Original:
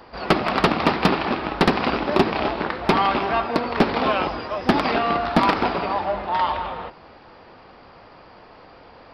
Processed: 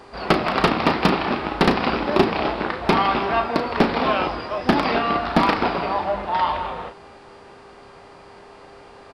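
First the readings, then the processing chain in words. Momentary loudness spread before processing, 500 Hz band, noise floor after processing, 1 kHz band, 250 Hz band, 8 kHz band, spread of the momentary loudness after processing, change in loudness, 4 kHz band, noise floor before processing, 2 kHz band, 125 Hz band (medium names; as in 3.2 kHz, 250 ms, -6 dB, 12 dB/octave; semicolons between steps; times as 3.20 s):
6 LU, +0.5 dB, -45 dBFS, +0.5 dB, +0.5 dB, no reading, 5 LU, +0.5 dB, +0.5 dB, -47 dBFS, +0.5 dB, +0.5 dB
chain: doubling 35 ms -9 dB; mains buzz 400 Hz, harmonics 26, -50 dBFS -7 dB/octave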